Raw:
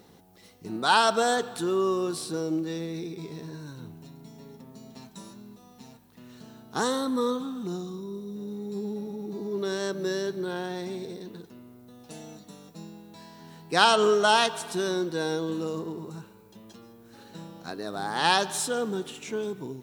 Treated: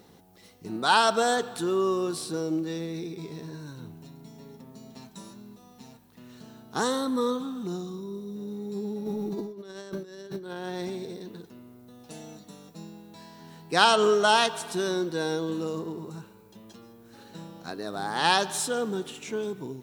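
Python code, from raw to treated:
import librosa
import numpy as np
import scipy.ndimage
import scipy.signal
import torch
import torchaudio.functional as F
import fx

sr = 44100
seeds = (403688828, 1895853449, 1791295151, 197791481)

y = fx.over_compress(x, sr, threshold_db=-36.0, ratio=-0.5, at=(9.05, 10.9), fade=0.02)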